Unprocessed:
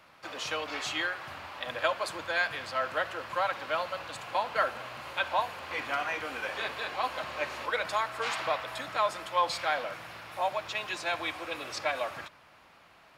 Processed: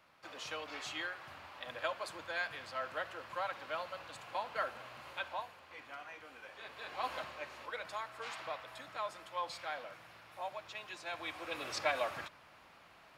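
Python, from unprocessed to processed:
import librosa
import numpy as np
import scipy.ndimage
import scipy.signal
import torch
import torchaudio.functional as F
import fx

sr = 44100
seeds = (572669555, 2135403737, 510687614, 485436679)

y = fx.gain(x, sr, db=fx.line((5.13, -9.0), (5.67, -17.0), (6.58, -17.0), (7.14, -4.5), (7.4, -12.0), (11.03, -12.0), (11.67, -2.5)))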